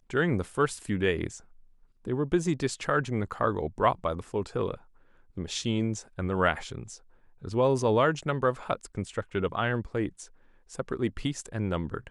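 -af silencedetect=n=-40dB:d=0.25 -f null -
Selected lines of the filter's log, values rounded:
silence_start: 1.38
silence_end: 2.05 | silence_duration: 0.67
silence_start: 4.77
silence_end: 5.37 | silence_duration: 0.60
silence_start: 6.96
silence_end: 7.43 | silence_duration: 0.47
silence_start: 10.25
silence_end: 10.71 | silence_duration: 0.46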